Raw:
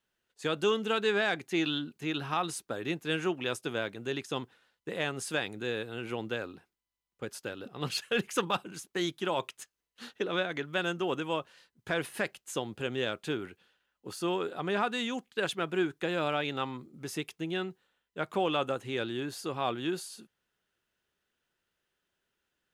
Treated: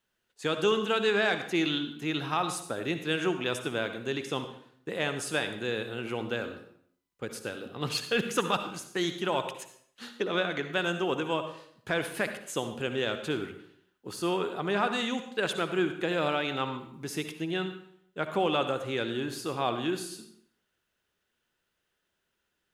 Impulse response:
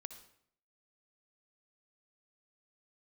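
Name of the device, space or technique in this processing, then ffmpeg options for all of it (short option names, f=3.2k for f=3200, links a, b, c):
bathroom: -filter_complex "[1:a]atrim=start_sample=2205[a];[0:a][a]afir=irnorm=-1:irlink=0,volume=7dB"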